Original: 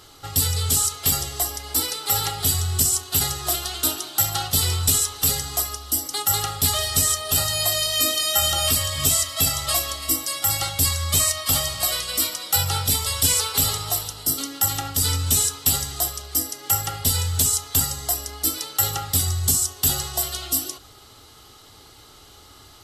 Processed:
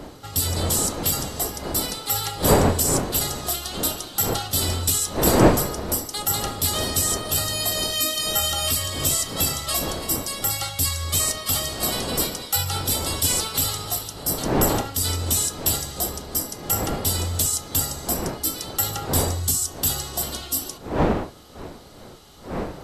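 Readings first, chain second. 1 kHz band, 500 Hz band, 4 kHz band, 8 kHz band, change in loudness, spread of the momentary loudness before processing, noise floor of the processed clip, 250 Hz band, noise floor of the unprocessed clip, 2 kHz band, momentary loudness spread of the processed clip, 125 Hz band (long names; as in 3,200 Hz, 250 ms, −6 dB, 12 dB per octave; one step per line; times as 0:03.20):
+2.0 dB, +7.5 dB, −2.5 dB, −2.5 dB, −1.5 dB, 5 LU, −41 dBFS, +8.5 dB, −48 dBFS, −0.5 dB, 6 LU, 0.0 dB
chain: wind on the microphone 560 Hz −26 dBFS
level −2.5 dB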